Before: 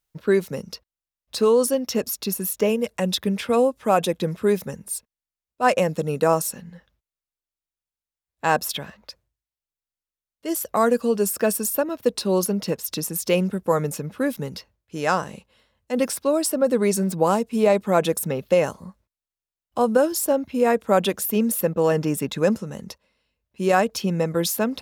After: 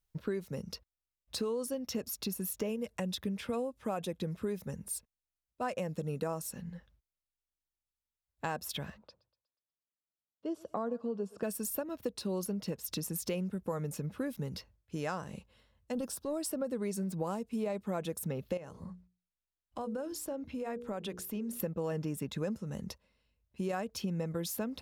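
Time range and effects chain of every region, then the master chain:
8.98–11.43 s: band-pass 150–2600 Hz + peaking EQ 2 kHz -14 dB 0.74 oct + thinning echo 121 ms, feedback 48%, high-pass 450 Hz, level -20 dB
15.92–16.37 s: peaking EQ 2.1 kHz -14 dB 0.5 oct + transient shaper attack -9 dB, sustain -2 dB
18.57–21.60 s: treble shelf 11 kHz -10.5 dB + hum notches 60/120/180/240/300/360/420/480 Hz + compression 2:1, threshold -36 dBFS
whole clip: bass shelf 160 Hz +11 dB; compression 4:1, threshold -27 dBFS; trim -7 dB

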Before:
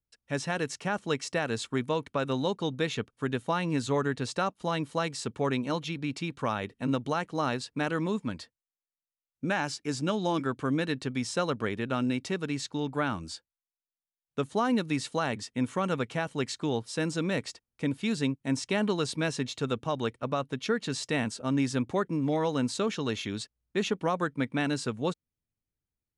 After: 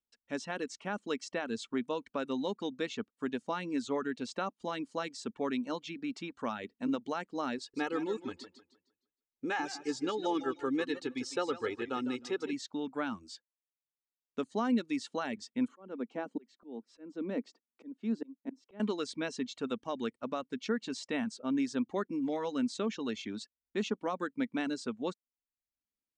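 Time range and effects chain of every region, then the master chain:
7.58–12.53 s: comb 2.4 ms, depth 75% + modulated delay 154 ms, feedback 33%, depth 78 cents, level -9.5 dB
15.68–18.80 s: high-pass 240 Hz 24 dB/octave + tilt EQ -4.5 dB/octave + slow attack 573 ms
whole clip: low-pass 7.8 kHz 24 dB/octave; resonant low shelf 180 Hz -7 dB, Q 3; reverb removal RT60 0.59 s; trim -6.5 dB

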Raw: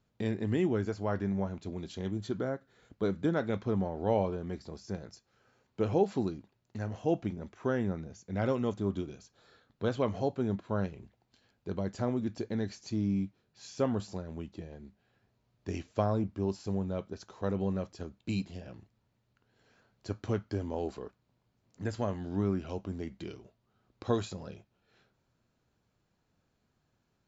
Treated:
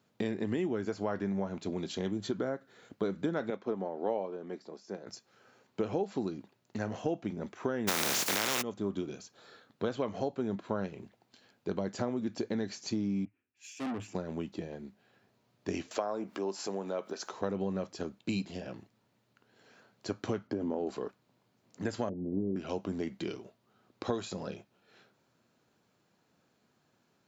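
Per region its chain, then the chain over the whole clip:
3.50–5.07 s: high-pass 330 Hz + tilt EQ -2 dB/octave + upward expansion, over -39 dBFS
7.87–8.61 s: spectral contrast reduction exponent 0.22 + level flattener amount 100%
13.25–14.15 s: FFT filter 110 Hz 0 dB, 150 Hz -21 dB, 270 Hz +6 dB, 470 Hz -9 dB, 740 Hz -7 dB, 1.4 kHz -1 dB, 2.6 kHz +11 dB, 4.2 kHz -15 dB, 9 kHz +2 dB + valve stage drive 40 dB, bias 0.3 + three bands expanded up and down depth 100%
15.91–17.32 s: Bessel high-pass 480 Hz + dynamic bell 3.6 kHz, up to -6 dB, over -58 dBFS, Q 1.1 + upward compressor, threshold -37 dBFS
20.47–20.87 s: high-pass 180 Hz + tilt EQ -3.5 dB/octave + compression 2:1, threshold -33 dBFS
22.09–22.56 s: block-companded coder 3-bit + inverse Chebyshev low-pass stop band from 1.2 kHz, stop band 50 dB
whole clip: high-pass 180 Hz 12 dB/octave; compression 5:1, threshold -36 dBFS; trim +6.5 dB

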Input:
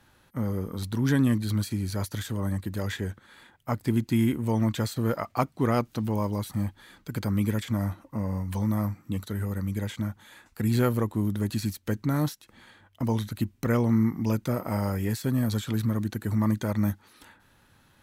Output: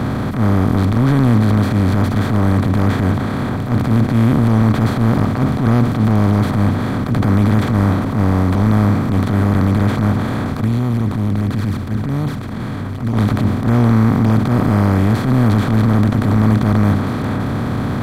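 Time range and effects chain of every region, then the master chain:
10.61–13.14 s: compression 4:1, threshold -27 dBFS + touch-sensitive flanger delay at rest 8.8 ms, full sweep at -26.5 dBFS + amplifier tone stack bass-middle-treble 6-0-2
whole clip: spectral levelling over time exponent 0.2; transient shaper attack -11 dB, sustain +4 dB; tone controls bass +11 dB, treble -10 dB

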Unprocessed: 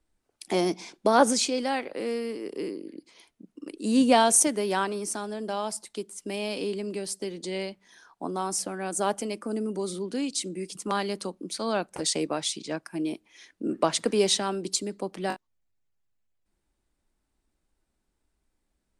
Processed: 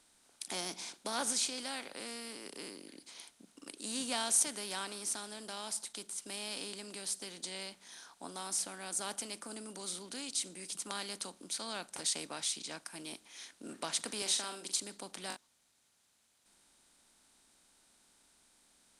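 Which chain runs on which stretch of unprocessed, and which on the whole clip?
14.22–14.80 s: high-pass 280 Hz + doubling 44 ms -10.5 dB
whole clip: spectral levelling over time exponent 0.6; amplifier tone stack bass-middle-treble 5-5-5; trim -3.5 dB

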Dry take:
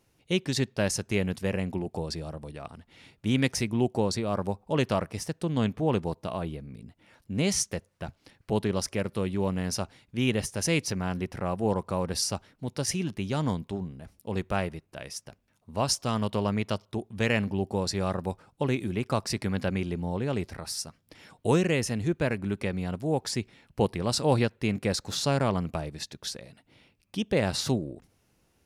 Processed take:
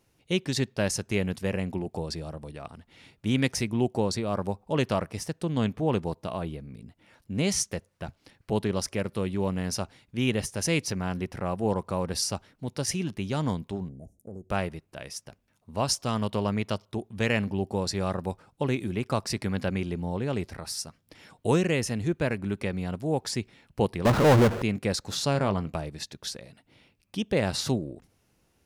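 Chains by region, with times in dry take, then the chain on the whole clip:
13.89–14.50 s: Chebyshev band-stop 700–6400 Hz, order 4 + treble shelf 11 kHz -12 dB + compression 5:1, threshold -37 dBFS
24.05–24.62 s: low-pass 1.4 kHz 24 dB/octave + bass shelf 140 Hz -5 dB + power-law waveshaper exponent 0.35
25.33–25.74 s: treble shelf 7.7 kHz -8.5 dB + doubling 20 ms -12 dB
whole clip: none

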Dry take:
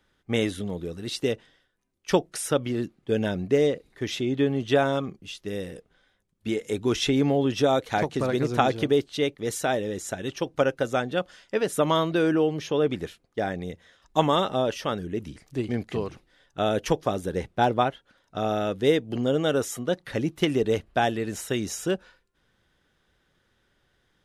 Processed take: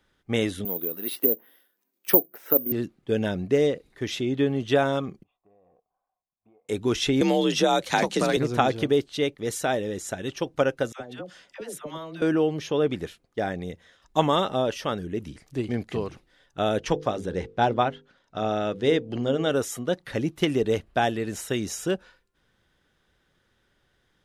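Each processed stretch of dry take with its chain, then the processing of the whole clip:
0.65–2.72 s: high-pass 220 Hz 24 dB/octave + low-pass that closes with the level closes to 620 Hz, closed at -24 dBFS + careless resampling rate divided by 3×, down none, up zero stuff
5.23–6.69 s: cascade formant filter a + compression 4:1, threshold -57 dBFS
7.21–8.37 s: peaking EQ 6.7 kHz +8.5 dB 2.8 oct + frequency shift +48 Hz + three bands compressed up and down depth 70%
10.92–12.22 s: high-pass 100 Hz 6 dB/octave + compression 4:1, threshold -35 dBFS + phase dispersion lows, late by 81 ms, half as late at 710 Hz
16.78–19.51 s: low-pass 6.8 kHz + hum notches 50/100/150/200/250/300/350/400/450/500 Hz
whole clip: none

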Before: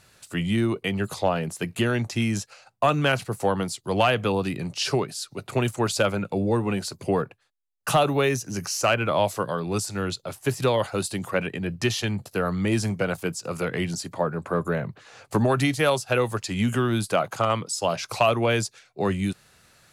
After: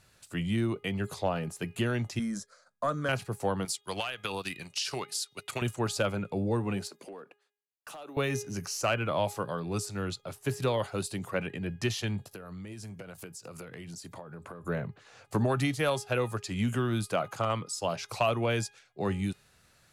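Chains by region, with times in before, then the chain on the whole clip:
2.19–3.09 s: low-pass 11 kHz 24 dB/octave + static phaser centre 540 Hz, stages 8
3.65–5.62 s: tilt shelf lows -9.5 dB, about 900 Hz + compression 8:1, threshold -22 dBFS + transient shaper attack +2 dB, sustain -10 dB
6.87–8.17 s: high-pass 240 Hz 24 dB/octave + compression, threshold -35 dBFS + hard clipper -31 dBFS
12.31–14.64 s: treble shelf 5.5 kHz +5.5 dB + transient shaper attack +6 dB, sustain +1 dB + compression 16:1, threshold -33 dBFS
whole clip: bass shelf 98 Hz +6 dB; de-hum 412.4 Hz, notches 9; trim -7 dB

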